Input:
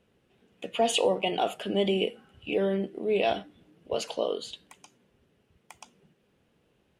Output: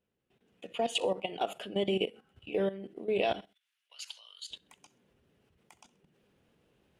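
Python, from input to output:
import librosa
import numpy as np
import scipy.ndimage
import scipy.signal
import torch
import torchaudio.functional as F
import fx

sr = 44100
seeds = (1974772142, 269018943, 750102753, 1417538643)

y = fx.rider(x, sr, range_db=10, speed_s=2.0)
y = fx.bessel_highpass(y, sr, hz=2300.0, order=4, at=(3.41, 4.5))
y = fx.echo_feedback(y, sr, ms=65, feedback_pct=35, wet_db=-22)
y = fx.level_steps(y, sr, step_db=14)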